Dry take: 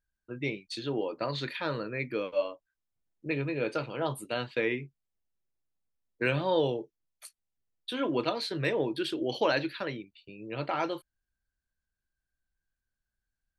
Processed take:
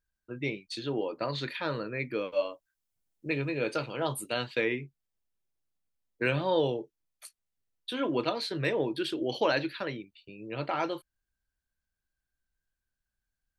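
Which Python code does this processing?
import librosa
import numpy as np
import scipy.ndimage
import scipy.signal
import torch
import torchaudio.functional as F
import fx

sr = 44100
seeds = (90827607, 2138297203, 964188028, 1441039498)

y = fx.high_shelf(x, sr, hz=fx.line((2.31, 5500.0), (4.63, 3500.0)), db=8.0, at=(2.31, 4.63), fade=0.02)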